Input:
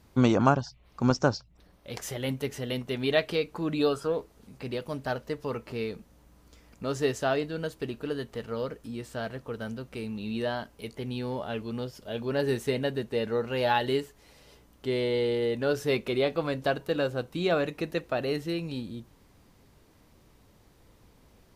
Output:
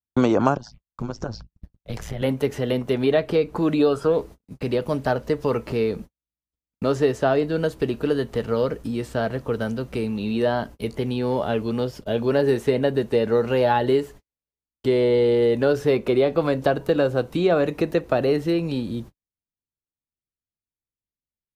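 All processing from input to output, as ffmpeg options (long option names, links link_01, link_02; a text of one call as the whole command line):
ffmpeg -i in.wav -filter_complex "[0:a]asettb=1/sr,asplit=3[link_01][link_02][link_03];[link_01]atrim=end=0.574[link_04];[link_02]atrim=start=0.57:end=2.22,asetpts=PTS-STARTPTS,afade=type=in:duration=0.004:curve=qsin,afade=type=out:start_time=1.646:duration=0.004:curve=qsin,asubboost=boost=12:cutoff=94,acompressor=threshold=-33dB:ratio=5:attack=3.2:release=140:knee=1:detection=peak,tremolo=f=110:d=0.857[link_05];[link_03]atrim=start=2.216[link_06];[link_04][link_05]acrossfade=duration=0.004:curve1=hsin:curve2=qsin[link_07];[link_07][link_06]acrossfade=duration=0.004:curve1=qsin:curve2=hsin,agate=range=-57dB:threshold=-47dB:ratio=16:detection=peak,lowshelf=frequency=450:gain=9,acrossover=split=330|1700|3900[link_08][link_09][link_10][link_11];[link_08]acompressor=threshold=-37dB:ratio=4[link_12];[link_09]acompressor=threshold=-25dB:ratio=4[link_13];[link_10]acompressor=threshold=-48dB:ratio=4[link_14];[link_11]acompressor=threshold=-54dB:ratio=4[link_15];[link_12][link_13][link_14][link_15]amix=inputs=4:normalize=0,volume=8dB" out.wav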